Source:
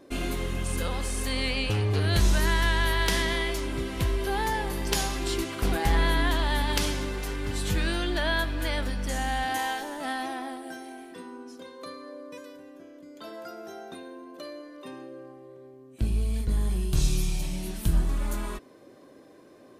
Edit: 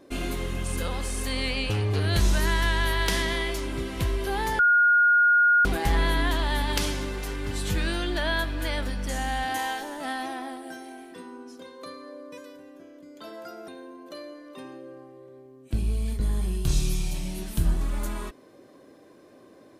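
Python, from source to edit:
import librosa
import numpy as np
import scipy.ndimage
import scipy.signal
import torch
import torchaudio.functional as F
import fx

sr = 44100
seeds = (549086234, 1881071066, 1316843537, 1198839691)

y = fx.edit(x, sr, fx.bleep(start_s=4.59, length_s=1.06, hz=1430.0, db=-15.5),
    fx.cut(start_s=13.68, length_s=0.28), tone=tone)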